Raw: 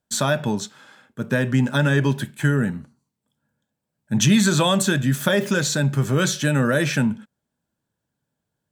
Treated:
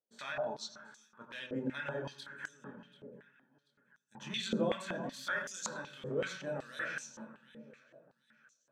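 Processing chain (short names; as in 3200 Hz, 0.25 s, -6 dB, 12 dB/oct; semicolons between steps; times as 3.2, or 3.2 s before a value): 2.45–4.2 treble ducked by the level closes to 790 Hz, closed at -16.5 dBFS; chorus voices 6, 0.42 Hz, delay 24 ms, depth 3 ms; in parallel at -1 dB: level quantiser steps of 9 dB; on the sum: echo with dull and thin repeats by turns 0.368 s, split 1300 Hz, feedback 54%, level -12 dB; on a send at -6 dB: reverb RT60 0.45 s, pre-delay 75 ms; on the sum: stepped band-pass 5.3 Hz 490–6400 Hz; gain -6.5 dB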